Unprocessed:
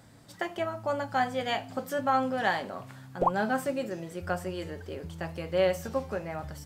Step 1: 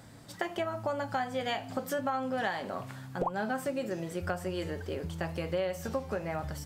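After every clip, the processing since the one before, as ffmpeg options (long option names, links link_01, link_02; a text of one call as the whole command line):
ffmpeg -i in.wav -af "acompressor=threshold=-32dB:ratio=6,volume=3dB" out.wav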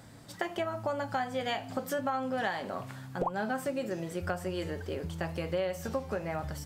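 ffmpeg -i in.wav -af anull out.wav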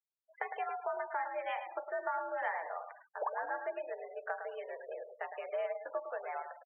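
ffmpeg -i in.wav -af "aecho=1:1:108|216|324|432:0.398|0.135|0.046|0.0156,highpass=frequency=410:width_type=q:width=0.5412,highpass=frequency=410:width_type=q:width=1.307,lowpass=frequency=2600:width_type=q:width=0.5176,lowpass=frequency=2600:width_type=q:width=0.7071,lowpass=frequency=2600:width_type=q:width=1.932,afreqshift=78,afftfilt=real='re*gte(hypot(re,im),0.0112)':imag='im*gte(hypot(re,im),0.0112)':win_size=1024:overlap=0.75,volume=-4dB" out.wav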